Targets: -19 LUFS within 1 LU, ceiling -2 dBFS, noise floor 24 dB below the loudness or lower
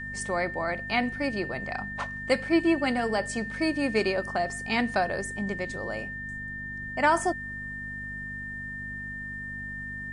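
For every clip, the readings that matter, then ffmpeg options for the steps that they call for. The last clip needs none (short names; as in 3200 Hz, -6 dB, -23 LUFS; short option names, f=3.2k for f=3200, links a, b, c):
hum 50 Hz; harmonics up to 250 Hz; hum level -40 dBFS; steady tone 1800 Hz; tone level -35 dBFS; loudness -29.0 LUFS; peak -10.0 dBFS; loudness target -19.0 LUFS
-> -af "bandreject=f=50:t=h:w=4,bandreject=f=100:t=h:w=4,bandreject=f=150:t=h:w=4,bandreject=f=200:t=h:w=4,bandreject=f=250:t=h:w=4"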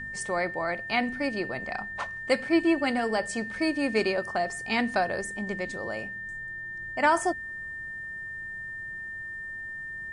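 hum none; steady tone 1800 Hz; tone level -35 dBFS
-> -af "bandreject=f=1.8k:w=30"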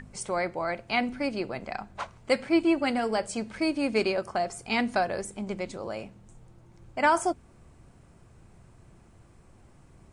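steady tone none; loudness -29.0 LUFS; peak -10.0 dBFS; loudness target -19.0 LUFS
-> -af "volume=10dB,alimiter=limit=-2dB:level=0:latency=1"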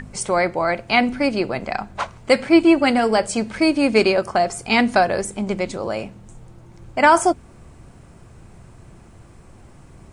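loudness -19.0 LUFS; peak -2.0 dBFS; noise floor -46 dBFS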